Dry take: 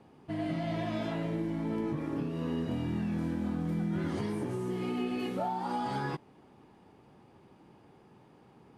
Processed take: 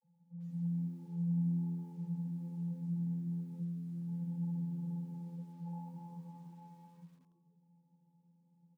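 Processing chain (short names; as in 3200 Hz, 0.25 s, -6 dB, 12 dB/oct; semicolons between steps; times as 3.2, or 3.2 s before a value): high shelf 2700 Hz +8 dB; fixed phaser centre 1300 Hz, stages 6; comb 5.7 ms, depth 98%; tapped delay 90/107/109/282/526/858 ms -18/-11/-13/-8/-13/-6 dB; 3.48–5.62 negative-ratio compressor -32 dBFS, ratio -0.5; vocal tract filter u; low shelf 170 Hz +8.5 dB; vocoder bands 32, square 171 Hz; frequency-shifting echo 0.161 s, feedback 47%, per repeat +85 Hz, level -20.5 dB; lo-fi delay 93 ms, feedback 35%, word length 11-bit, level -11 dB; gain +1.5 dB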